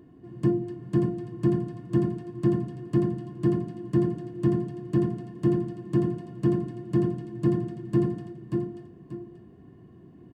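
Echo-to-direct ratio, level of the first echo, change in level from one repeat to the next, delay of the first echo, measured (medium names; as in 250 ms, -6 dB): -4.0 dB, -4.5 dB, -10.5 dB, 585 ms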